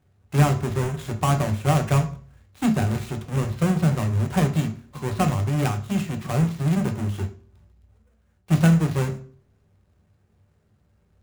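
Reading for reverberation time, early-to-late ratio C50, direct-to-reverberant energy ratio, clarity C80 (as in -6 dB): 0.45 s, 13.5 dB, 5.0 dB, 18.0 dB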